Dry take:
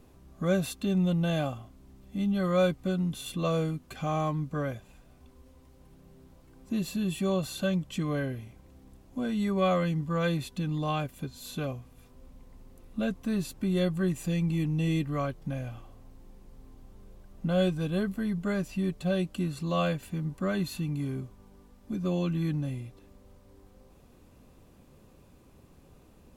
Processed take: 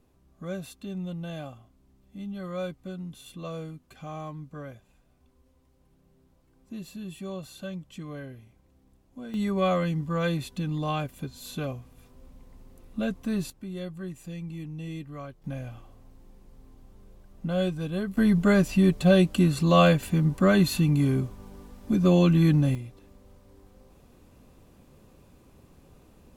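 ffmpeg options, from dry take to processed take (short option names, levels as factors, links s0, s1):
-af "asetnsamples=n=441:p=0,asendcmd='9.34 volume volume 1dB;13.5 volume volume -9dB;15.44 volume volume -1dB;18.17 volume volume 9.5dB;22.75 volume volume 1.5dB',volume=0.376"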